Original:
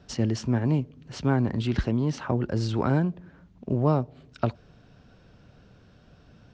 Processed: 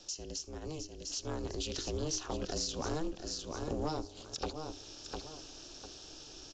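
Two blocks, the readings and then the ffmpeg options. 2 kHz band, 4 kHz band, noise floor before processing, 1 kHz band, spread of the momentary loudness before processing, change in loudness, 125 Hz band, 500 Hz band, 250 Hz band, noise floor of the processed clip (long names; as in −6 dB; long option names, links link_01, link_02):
−11.5 dB, +3.0 dB, −56 dBFS, −9.0 dB, 7 LU, −12.5 dB, −18.5 dB, −9.0 dB, −14.5 dB, −52 dBFS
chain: -filter_complex "[0:a]aexciter=amount=13.8:drive=8.1:freq=3200,asplit=2[link_01][link_02];[link_02]aecho=0:1:702|1404:0.178|0.0356[link_03];[link_01][link_03]amix=inputs=2:normalize=0,acompressor=threshold=-34dB:ratio=3,highpass=frequency=130:width=0.5412,highpass=frequency=130:width=1.3066,bandreject=frequency=50:width_type=h:width=6,bandreject=frequency=100:width_type=h:width=6,bandreject=frequency=150:width_type=h:width=6,bandreject=frequency=200:width_type=h:width=6,bandreject=frequency=250:width_type=h:width=6,dynaudnorm=framelen=210:gausssize=13:maxgain=7dB,equalizer=frequency=4000:width=1.2:gain=-9.5,asplit=2[link_04][link_05];[link_05]aecho=0:1:77:0.075[link_06];[link_04][link_06]amix=inputs=2:normalize=0,aeval=exprs='val(0)*sin(2*PI*160*n/s)':channel_layout=same,asoftclip=type=tanh:threshold=-23dB,volume=-2dB" -ar 16000 -c:a pcm_mulaw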